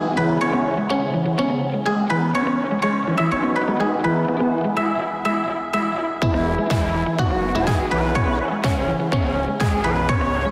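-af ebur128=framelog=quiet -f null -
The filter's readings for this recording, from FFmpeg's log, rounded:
Integrated loudness:
  I:         -20.7 LUFS
  Threshold: -30.7 LUFS
Loudness range:
  LRA:         0.8 LU
  Threshold: -40.8 LUFS
  LRA low:   -21.2 LUFS
  LRA high:  -20.4 LUFS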